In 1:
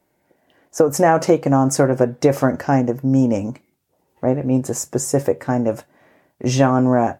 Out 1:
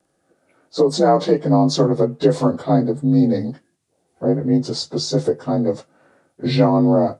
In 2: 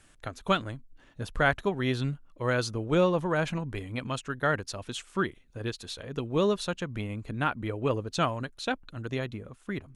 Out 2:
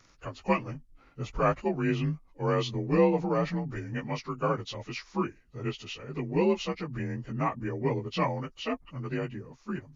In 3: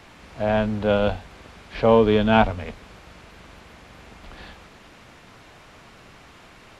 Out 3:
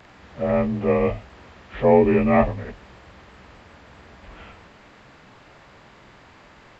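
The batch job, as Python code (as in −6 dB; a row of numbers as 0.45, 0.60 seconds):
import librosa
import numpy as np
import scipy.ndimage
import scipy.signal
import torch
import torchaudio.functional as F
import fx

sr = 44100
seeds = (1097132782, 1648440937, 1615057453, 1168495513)

y = fx.partial_stretch(x, sr, pct=88)
y = fx.dynamic_eq(y, sr, hz=1400.0, q=5.7, threshold_db=-49.0, ratio=4.0, max_db=-7)
y = y * 10.0 ** (1.5 / 20.0)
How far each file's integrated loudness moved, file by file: 0.0, −0.5, +0.5 LU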